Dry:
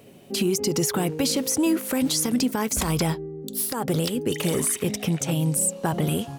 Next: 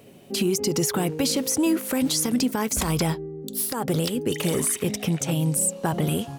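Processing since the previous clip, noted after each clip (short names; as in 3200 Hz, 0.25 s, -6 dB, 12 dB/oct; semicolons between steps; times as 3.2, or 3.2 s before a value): nothing audible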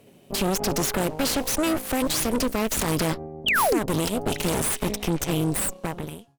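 ending faded out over 1.02 s; added harmonics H 4 -8 dB, 8 -16 dB, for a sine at -12.5 dBFS; painted sound fall, 3.46–3.79, 260–3400 Hz -17 dBFS; gain -4 dB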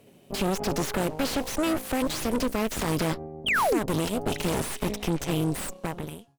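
slew limiter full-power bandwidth 230 Hz; gain -2 dB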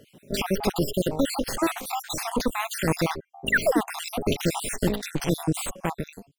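random spectral dropouts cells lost 57%; gain +5.5 dB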